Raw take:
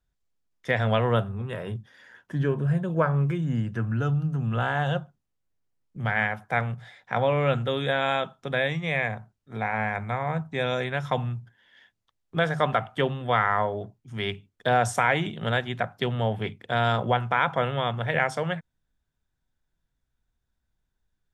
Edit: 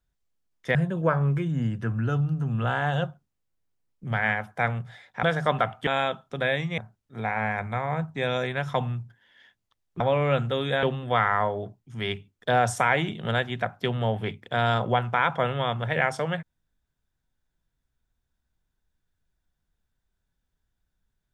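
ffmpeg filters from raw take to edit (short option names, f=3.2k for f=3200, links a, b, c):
-filter_complex "[0:a]asplit=7[a][b][c][d][e][f][g];[a]atrim=end=0.752[h];[b]atrim=start=2.678:end=7.162[i];[c]atrim=start=12.368:end=13.012[j];[d]atrim=start=7.988:end=8.902[k];[e]atrim=start=9.148:end=12.372[l];[f]atrim=start=7.158:end=7.992[m];[g]atrim=start=13.008[n];[h][i]acrossfade=d=0.004:c1=hsin:c2=hsin[o];[o][j]acrossfade=d=0.004:c1=hsin:c2=hsin[p];[p][k]acrossfade=d=0.004:c1=hsin:c2=hsin[q];[q][l]acrossfade=d=0.004:c1=hsin:c2=hsin[r];[r][m]acrossfade=d=0.004:c1=hsin:c2=hsin[s];[s][n]acrossfade=d=0.004:c1=hsin:c2=hsin"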